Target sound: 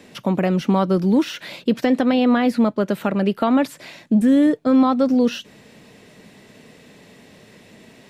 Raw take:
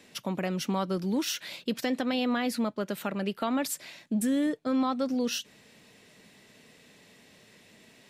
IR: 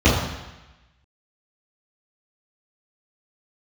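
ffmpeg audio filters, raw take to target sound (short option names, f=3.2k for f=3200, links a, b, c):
-filter_complex "[0:a]acrossover=split=3600[a][b];[b]acompressor=threshold=-45dB:ratio=4:attack=1:release=60[c];[a][c]amix=inputs=2:normalize=0,tiltshelf=f=1.4k:g=4,volume=8.5dB"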